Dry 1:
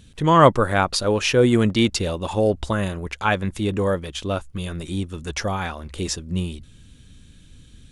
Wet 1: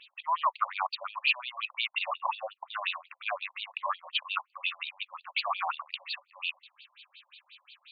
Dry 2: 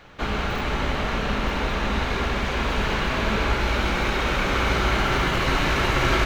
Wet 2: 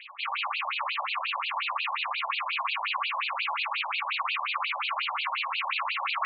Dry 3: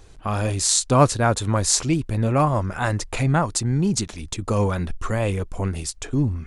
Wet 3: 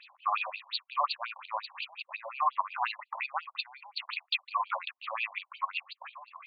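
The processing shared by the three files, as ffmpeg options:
-af "acontrast=52,highpass=f=210:w=0.5412,highpass=f=210:w=1.3066,equalizer=f=420:t=q:w=4:g=-7,equalizer=f=600:t=q:w=4:g=-10,equalizer=f=1.1k:t=q:w=4:g=9,equalizer=f=1.6k:t=q:w=4:g=-9,equalizer=f=2.6k:t=q:w=4:g=9,equalizer=f=4.6k:t=q:w=4:g=6,lowpass=f=10k:w=0.5412,lowpass=f=10k:w=1.3066,areverse,acompressor=threshold=-22dB:ratio=8,areverse,afftfilt=real='re*between(b*sr/1024,730*pow(3400/730,0.5+0.5*sin(2*PI*5.6*pts/sr))/1.41,730*pow(3400/730,0.5+0.5*sin(2*PI*5.6*pts/sr))*1.41)':imag='im*between(b*sr/1024,730*pow(3400/730,0.5+0.5*sin(2*PI*5.6*pts/sr))/1.41,730*pow(3400/730,0.5+0.5*sin(2*PI*5.6*pts/sr))*1.41)':win_size=1024:overlap=0.75"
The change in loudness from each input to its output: -11.0, -5.5, -12.5 LU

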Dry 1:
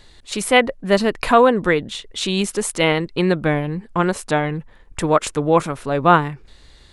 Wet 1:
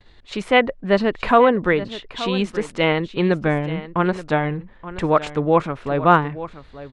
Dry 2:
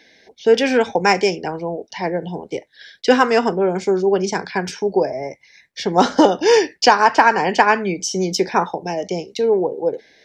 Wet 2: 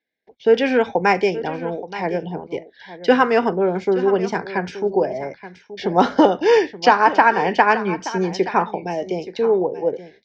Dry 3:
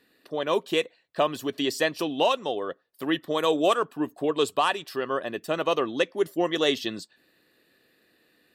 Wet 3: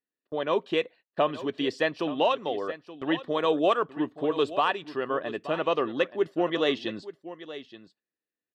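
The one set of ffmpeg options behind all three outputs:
-af "lowpass=3.2k,agate=range=-30dB:threshold=-48dB:ratio=16:detection=peak,aecho=1:1:876:0.188,volume=-1dB"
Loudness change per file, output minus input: -1.0, -1.0, -1.5 LU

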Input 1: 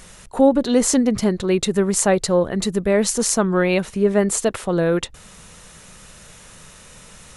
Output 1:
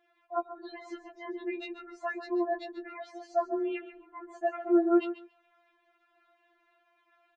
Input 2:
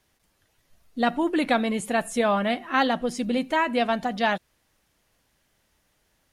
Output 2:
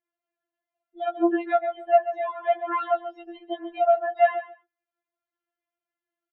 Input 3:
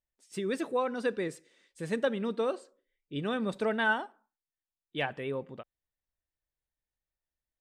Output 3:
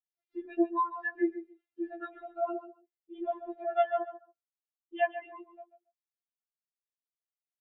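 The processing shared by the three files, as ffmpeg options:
-filter_complex "[0:a]afftdn=nr=24:nf=-32,acompressor=threshold=-29dB:ratio=16,highpass=f=130:w=0.5412,highpass=f=130:w=1.3066,equalizer=f=210:t=q:w=4:g=8,equalizer=f=660:t=q:w=4:g=8,equalizer=f=1.5k:t=q:w=4:g=5,lowpass=f=2.8k:w=0.5412,lowpass=f=2.8k:w=1.3066,asplit=2[a][b];[b]aecho=0:1:139|278:0.237|0.0356[c];[a][c]amix=inputs=2:normalize=0,afftfilt=real='re*4*eq(mod(b,16),0)':imag='im*4*eq(mod(b,16),0)':win_size=2048:overlap=0.75,volume=5dB"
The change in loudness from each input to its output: -13.5, 0.0, -1.0 LU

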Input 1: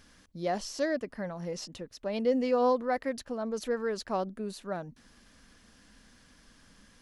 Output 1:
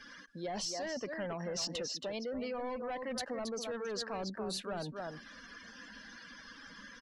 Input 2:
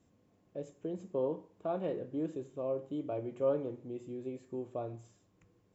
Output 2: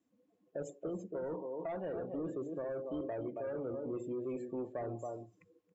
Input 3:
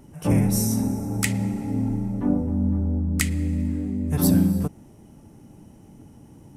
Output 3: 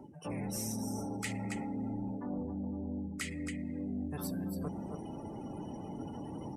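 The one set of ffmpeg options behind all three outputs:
-filter_complex "[0:a]areverse,acompressor=threshold=-38dB:ratio=12,areverse,aecho=1:1:274:0.376,asplit=2[a][b];[b]highpass=f=720:p=1,volume=19dB,asoftclip=type=tanh:threshold=-28dB[c];[a][c]amix=inputs=2:normalize=0,lowpass=f=6.4k:p=1,volume=-6dB,acrossover=split=210|3000[d][e][f];[e]acompressor=threshold=-38dB:ratio=6[g];[d][g][f]amix=inputs=3:normalize=0,afftdn=nr=24:nf=-50,volume=1.5dB"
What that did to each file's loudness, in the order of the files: -6.5, -2.5, -15.5 LU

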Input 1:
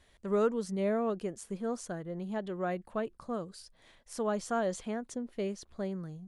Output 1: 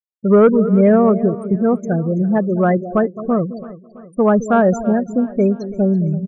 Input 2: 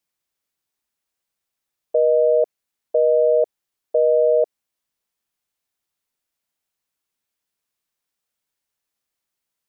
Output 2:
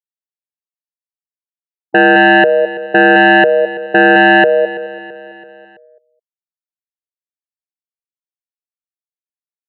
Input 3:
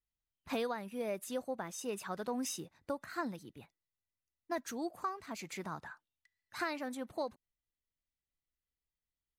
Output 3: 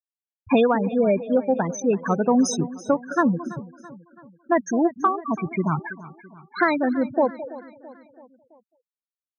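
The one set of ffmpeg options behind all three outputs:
-filter_complex "[0:a]asplit=2[a][b];[b]adelay=213,lowpass=f=2k:p=1,volume=-12.5dB,asplit=2[c][d];[d]adelay=213,lowpass=f=2k:p=1,volume=0.18[e];[c][e]amix=inputs=2:normalize=0[f];[a][f]amix=inputs=2:normalize=0,afftfilt=real='re*gte(hypot(re,im),0.0224)':imag='im*gte(hypot(re,im),0.0224)':win_size=1024:overlap=0.75,aeval=exprs='0.376*sin(PI/2*2.82*val(0)/0.376)':c=same,equalizer=f=110:t=o:w=1.6:g=10.5,asplit=2[g][h];[h]aecho=0:1:332|664|996|1328:0.126|0.0655|0.034|0.0177[i];[g][i]amix=inputs=2:normalize=0,volume=4dB"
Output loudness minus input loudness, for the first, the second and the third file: +19.0, +9.5, +18.0 LU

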